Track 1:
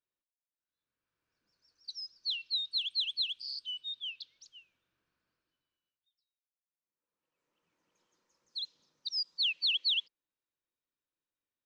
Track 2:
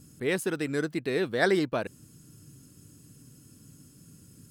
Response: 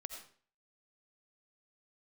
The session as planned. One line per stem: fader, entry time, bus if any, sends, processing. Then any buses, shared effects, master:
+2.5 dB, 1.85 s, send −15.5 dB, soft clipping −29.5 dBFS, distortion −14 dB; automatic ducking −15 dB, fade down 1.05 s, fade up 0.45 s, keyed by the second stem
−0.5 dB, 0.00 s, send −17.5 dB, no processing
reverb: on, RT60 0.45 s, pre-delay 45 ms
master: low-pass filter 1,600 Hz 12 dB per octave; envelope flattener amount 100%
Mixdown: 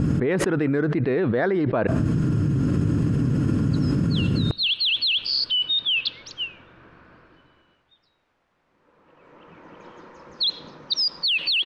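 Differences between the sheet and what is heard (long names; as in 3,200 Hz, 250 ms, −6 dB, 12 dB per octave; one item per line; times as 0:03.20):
stem 1 +2.5 dB → −4.5 dB
stem 2: send −17.5 dB → −23.5 dB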